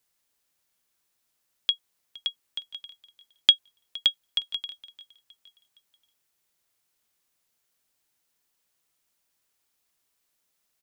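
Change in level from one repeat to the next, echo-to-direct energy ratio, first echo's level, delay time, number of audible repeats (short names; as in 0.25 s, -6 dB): -7.0 dB, -20.5 dB, -21.5 dB, 0.465 s, 2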